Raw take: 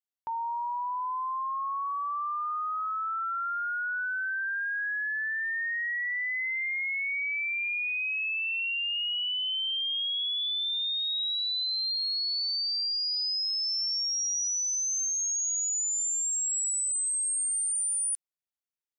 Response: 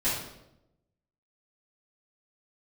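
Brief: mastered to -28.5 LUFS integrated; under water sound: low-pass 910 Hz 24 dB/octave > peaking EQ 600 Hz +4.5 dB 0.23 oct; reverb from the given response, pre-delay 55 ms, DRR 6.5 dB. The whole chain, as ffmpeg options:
-filter_complex "[0:a]asplit=2[s0][s1];[1:a]atrim=start_sample=2205,adelay=55[s2];[s1][s2]afir=irnorm=-1:irlink=0,volume=0.15[s3];[s0][s3]amix=inputs=2:normalize=0,lowpass=f=910:w=0.5412,lowpass=f=910:w=1.3066,equalizer=f=600:t=o:w=0.23:g=4.5,volume=3.98"

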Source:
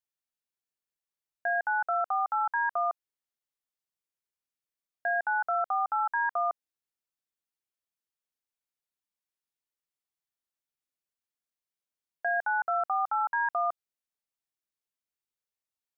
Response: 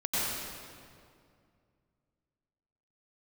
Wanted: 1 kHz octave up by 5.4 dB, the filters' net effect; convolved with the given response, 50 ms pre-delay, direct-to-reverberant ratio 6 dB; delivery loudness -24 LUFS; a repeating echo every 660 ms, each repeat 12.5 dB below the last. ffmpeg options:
-filter_complex "[0:a]equalizer=f=1000:t=o:g=7.5,aecho=1:1:660|1320|1980:0.237|0.0569|0.0137,asplit=2[s0][s1];[1:a]atrim=start_sample=2205,adelay=50[s2];[s1][s2]afir=irnorm=-1:irlink=0,volume=0.168[s3];[s0][s3]amix=inputs=2:normalize=0,volume=1.06"

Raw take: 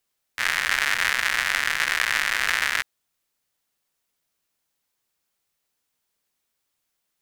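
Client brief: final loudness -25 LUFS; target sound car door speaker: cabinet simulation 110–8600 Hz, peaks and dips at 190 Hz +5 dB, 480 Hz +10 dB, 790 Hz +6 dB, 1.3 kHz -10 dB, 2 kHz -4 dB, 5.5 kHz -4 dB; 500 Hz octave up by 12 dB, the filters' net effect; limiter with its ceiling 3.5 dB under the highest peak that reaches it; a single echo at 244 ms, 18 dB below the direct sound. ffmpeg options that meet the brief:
-af "equalizer=f=500:t=o:g=7.5,alimiter=limit=0.447:level=0:latency=1,highpass=110,equalizer=f=190:t=q:w=4:g=5,equalizer=f=480:t=q:w=4:g=10,equalizer=f=790:t=q:w=4:g=6,equalizer=f=1300:t=q:w=4:g=-10,equalizer=f=2000:t=q:w=4:g=-4,equalizer=f=5500:t=q:w=4:g=-4,lowpass=f=8600:w=0.5412,lowpass=f=8600:w=1.3066,aecho=1:1:244:0.126,volume=1.12"

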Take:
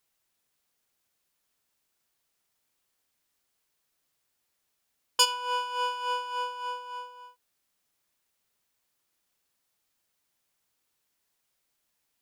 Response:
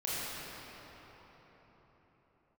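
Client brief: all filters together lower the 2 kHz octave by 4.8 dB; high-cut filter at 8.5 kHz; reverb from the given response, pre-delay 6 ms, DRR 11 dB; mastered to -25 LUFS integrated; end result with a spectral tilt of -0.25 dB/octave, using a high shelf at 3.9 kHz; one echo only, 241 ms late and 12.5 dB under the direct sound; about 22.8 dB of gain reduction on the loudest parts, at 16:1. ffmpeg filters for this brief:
-filter_complex "[0:a]lowpass=8500,equalizer=f=2000:t=o:g=-6,highshelf=f=3900:g=-8,acompressor=threshold=0.00708:ratio=16,aecho=1:1:241:0.237,asplit=2[s0][s1];[1:a]atrim=start_sample=2205,adelay=6[s2];[s1][s2]afir=irnorm=-1:irlink=0,volume=0.133[s3];[s0][s3]amix=inputs=2:normalize=0,volume=12.6"

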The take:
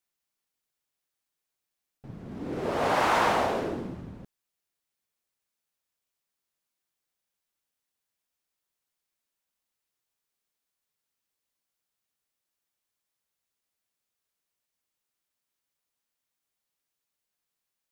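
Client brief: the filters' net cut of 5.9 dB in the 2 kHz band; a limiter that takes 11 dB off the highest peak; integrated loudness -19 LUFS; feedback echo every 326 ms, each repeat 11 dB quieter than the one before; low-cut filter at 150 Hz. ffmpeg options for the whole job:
-af "highpass=150,equalizer=f=2000:t=o:g=-8,alimiter=limit=0.0631:level=0:latency=1,aecho=1:1:326|652|978:0.282|0.0789|0.0221,volume=6.31"

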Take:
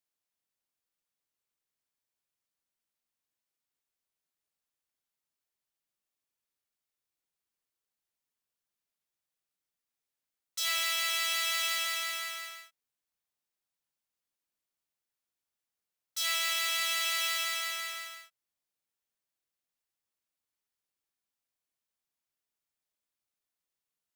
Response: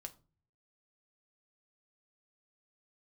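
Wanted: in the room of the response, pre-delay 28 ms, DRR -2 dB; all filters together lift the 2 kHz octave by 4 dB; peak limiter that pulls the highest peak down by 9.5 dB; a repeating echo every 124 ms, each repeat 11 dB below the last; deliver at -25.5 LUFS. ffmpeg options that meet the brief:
-filter_complex "[0:a]equalizer=f=2000:t=o:g=4.5,alimiter=level_in=1.12:limit=0.0631:level=0:latency=1,volume=0.891,aecho=1:1:124|248|372:0.282|0.0789|0.0221,asplit=2[s0][s1];[1:a]atrim=start_sample=2205,adelay=28[s2];[s1][s2]afir=irnorm=-1:irlink=0,volume=2.24[s3];[s0][s3]amix=inputs=2:normalize=0,volume=1.78"

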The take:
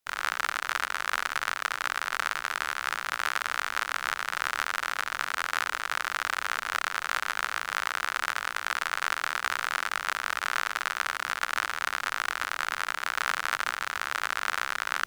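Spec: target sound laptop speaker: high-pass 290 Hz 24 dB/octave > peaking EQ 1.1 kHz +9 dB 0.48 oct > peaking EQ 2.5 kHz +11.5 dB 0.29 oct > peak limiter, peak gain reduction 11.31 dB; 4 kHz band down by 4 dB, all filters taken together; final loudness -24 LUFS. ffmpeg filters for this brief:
-af "highpass=f=290:w=0.5412,highpass=f=290:w=1.3066,equalizer=f=1100:t=o:w=0.48:g=9,equalizer=f=2500:t=o:w=0.29:g=11.5,equalizer=f=4000:t=o:g=-9,volume=2.99,alimiter=limit=0.355:level=0:latency=1"

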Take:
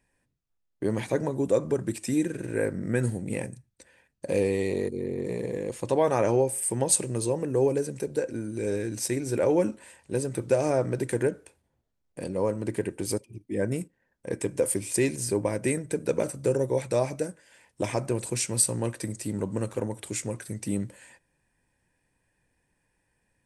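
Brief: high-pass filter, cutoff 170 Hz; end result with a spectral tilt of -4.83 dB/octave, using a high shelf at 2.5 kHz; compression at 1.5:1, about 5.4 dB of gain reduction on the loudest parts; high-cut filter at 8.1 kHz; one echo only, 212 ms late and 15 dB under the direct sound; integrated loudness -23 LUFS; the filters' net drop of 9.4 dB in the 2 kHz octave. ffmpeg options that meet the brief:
-af "highpass=170,lowpass=8100,equalizer=f=2000:t=o:g=-8.5,highshelf=f=2500:g=-8,acompressor=threshold=0.02:ratio=1.5,aecho=1:1:212:0.178,volume=3.55"

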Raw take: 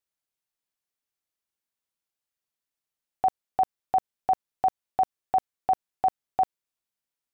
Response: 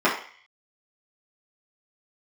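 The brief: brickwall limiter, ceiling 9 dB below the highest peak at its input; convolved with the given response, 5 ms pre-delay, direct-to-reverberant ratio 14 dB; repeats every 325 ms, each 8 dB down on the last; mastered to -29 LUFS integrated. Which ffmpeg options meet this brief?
-filter_complex "[0:a]alimiter=level_in=1.12:limit=0.0631:level=0:latency=1,volume=0.891,aecho=1:1:325|650|975|1300|1625:0.398|0.159|0.0637|0.0255|0.0102,asplit=2[s0][s1];[1:a]atrim=start_sample=2205,adelay=5[s2];[s1][s2]afir=irnorm=-1:irlink=0,volume=0.0224[s3];[s0][s3]amix=inputs=2:normalize=0,volume=2.37"

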